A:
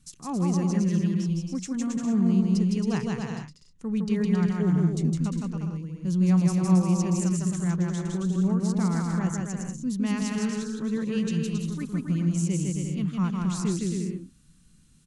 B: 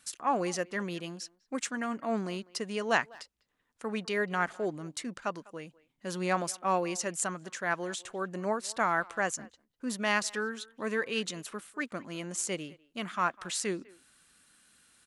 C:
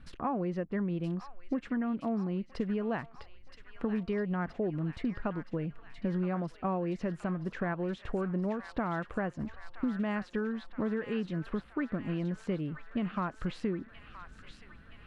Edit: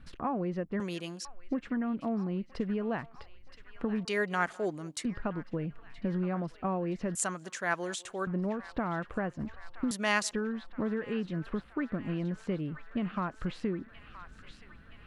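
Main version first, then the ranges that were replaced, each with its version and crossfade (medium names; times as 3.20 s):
C
0.80–1.25 s: from B
4.05–5.05 s: from B
7.15–8.27 s: from B
9.91–10.31 s: from B
not used: A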